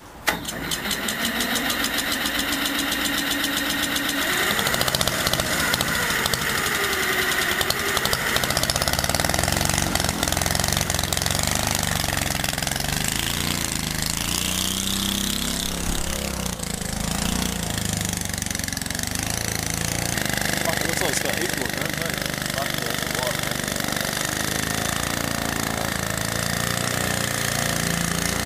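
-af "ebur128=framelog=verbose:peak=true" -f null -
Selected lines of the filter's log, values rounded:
Integrated loudness:
  I:         -22.4 LUFS
  Threshold: -32.4 LUFS
Loudness range:
  LRA:         3.6 LU
  Threshold: -42.4 LUFS
  LRA low:   -24.3 LUFS
  LRA high:  -20.7 LUFS
True peak:
  Peak:       -3.4 dBFS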